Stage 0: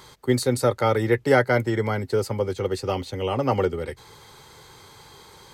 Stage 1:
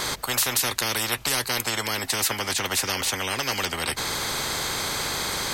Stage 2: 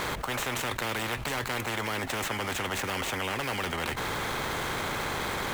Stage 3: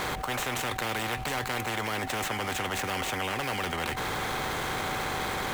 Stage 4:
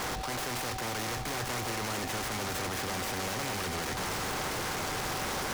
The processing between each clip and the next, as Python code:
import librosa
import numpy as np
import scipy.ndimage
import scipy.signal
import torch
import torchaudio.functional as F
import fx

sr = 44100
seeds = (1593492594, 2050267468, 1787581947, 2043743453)

y1 = fx.spectral_comp(x, sr, ratio=10.0)
y2 = scipy.ndimage.median_filter(y1, 9, mode='constant')
y2 = fx.env_flatten(y2, sr, amount_pct=70)
y2 = y2 * librosa.db_to_amplitude(-4.5)
y3 = y2 + 10.0 ** (-39.0 / 20.0) * np.sin(2.0 * np.pi * 760.0 * np.arange(len(y2)) / sr)
y4 = np.clip(10.0 ** (32.5 / 20.0) * y3, -1.0, 1.0) / 10.0 ** (32.5 / 20.0)
y4 = y4 + 10.0 ** (-8.0 / 20.0) * np.pad(y4, (int(1064 * sr / 1000.0), 0))[:len(y4)]
y4 = fx.noise_mod_delay(y4, sr, seeds[0], noise_hz=3400.0, depth_ms=0.073)
y4 = y4 * librosa.db_to_amplitude(1.0)